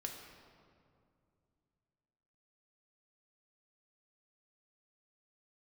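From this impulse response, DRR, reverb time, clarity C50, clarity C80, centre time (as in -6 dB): 1.5 dB, 2.4 s, 4.0 dB, 5.5 dB, 59 ms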